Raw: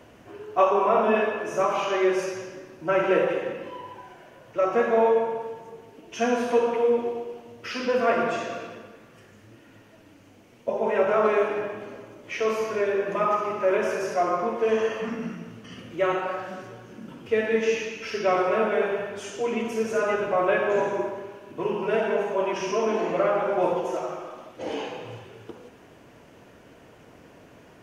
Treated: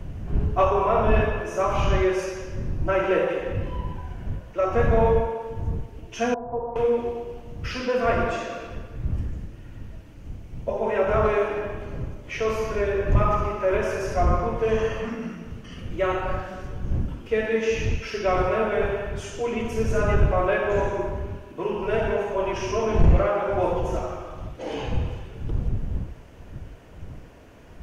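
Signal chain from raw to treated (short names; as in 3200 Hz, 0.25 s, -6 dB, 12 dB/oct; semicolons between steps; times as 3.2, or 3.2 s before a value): wind noise 90 Hz -27 dBFS; soft clip -7 dBFS, distortion -19 dB; 6.34–6.76 ladder low-pass 910 Hz, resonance 65%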